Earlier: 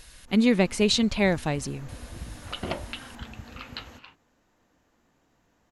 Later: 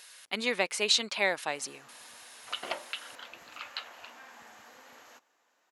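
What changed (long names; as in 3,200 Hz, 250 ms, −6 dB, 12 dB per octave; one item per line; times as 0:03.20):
first sound: entry +1.20 s
master: add high-pass filter 700 Hz 12 dB per octave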